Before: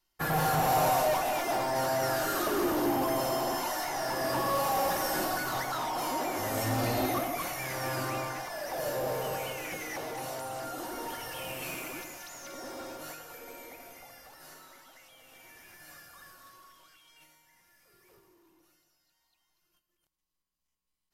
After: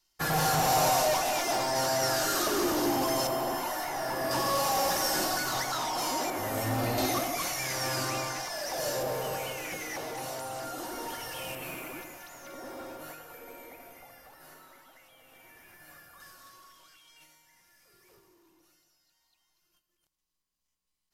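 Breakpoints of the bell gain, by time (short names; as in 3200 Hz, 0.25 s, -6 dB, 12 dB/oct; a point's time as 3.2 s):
bell 5800 Hz 1.6 oct
+9 dB
from 3.27 s -2.5 dB
from 4.31 s +8 dB
from 6.3 s -2 dB
from 6.98 s +9.5 dB
from 9.03 s +3 dB
from 11.55 s -6.5 dB
from 16.2 s +4 dB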